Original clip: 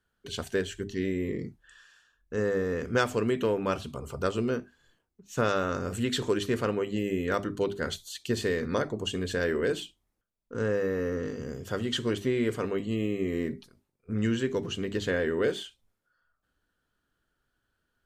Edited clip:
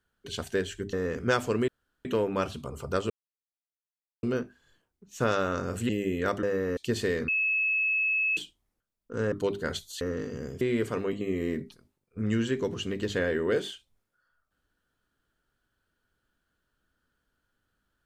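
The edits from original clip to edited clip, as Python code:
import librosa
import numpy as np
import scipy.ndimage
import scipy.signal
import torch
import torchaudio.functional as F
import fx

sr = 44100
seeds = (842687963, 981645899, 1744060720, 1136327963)

y = fx.edit(x, sr, fx.cut(start_s=0.93, length_s=1.67),
    fx.insert_room_tone(at_s=3.35, length_s=0.37),
    fx.insert_silence(at_s=4.4, length_s=1.13),
    fx.cut(start_s=6.06, length_s=0.89),
    fx.swap(start_s=7.49, length_s=0.69, other_s=10.73, other_length_s=0.34),
    fx.bleep(start_s=8.69, length_s=1.09, hz=2590.0, db=-23.5),
    fx.cut(start_s=11.67, length_s=0.61),
    fx.cut(start_s=12.88, length_s=0.25), tone=tone)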